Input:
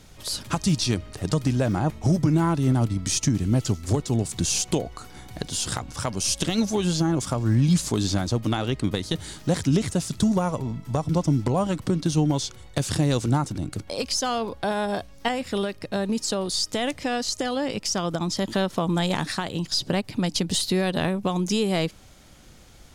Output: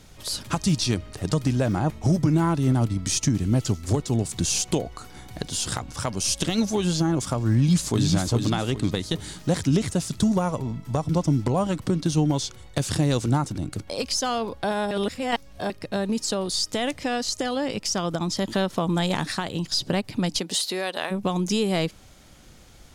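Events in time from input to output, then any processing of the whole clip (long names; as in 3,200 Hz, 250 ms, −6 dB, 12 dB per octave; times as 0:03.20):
0:07.54–0:08.08: delay throw 410 ms, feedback 35%, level −4.5 dB
0:14.91–0:15.70: reverse
0:20.38–0:21.10: high-pass filter 270 Hz → 680 Hz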